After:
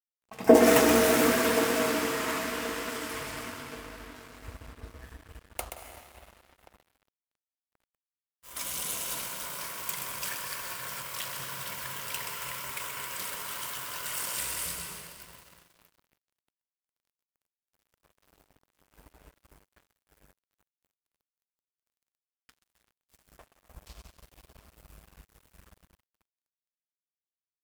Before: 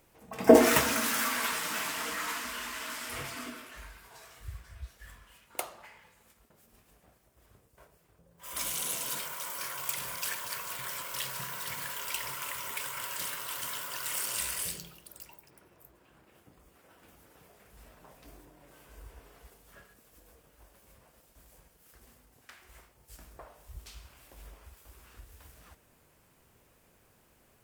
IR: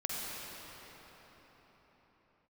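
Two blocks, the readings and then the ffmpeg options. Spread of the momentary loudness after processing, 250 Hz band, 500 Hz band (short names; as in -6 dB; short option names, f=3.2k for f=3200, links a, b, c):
24 LU, +3.5 dB, +3.5 dB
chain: -filter_complex "[0:a]asplit=2[a][b];[b]adelay=1079,lowpass=f=900:p=1,volume=-12dB,asplit=2[c][d];[d]adelay=1079,lowpass=f=900:p=1,volume=0.43,asplit=2[e][f];[f]adelay=1079,lowpass=f=900:p=1,volume=0.43,asplit=2[g][h];[h]adelay=1079,lowpass=f=900:p=1,volume=0.43[i];[a][c][e][g][i]amix=inputs=5:normalize=0,asplit=2[j][k];[1:a]atrim=start_sample=2205,lowshelf=f=180:g=4,adelay=127[l];[k][l]afir=irnorm=-1:irlink=0,volume=-5dB[m];[j][m]amix=inputs=2:normalize=0,aeval=exprs='sgn(val(0))*max(abs(val(0))-0.00501,0)':c=same"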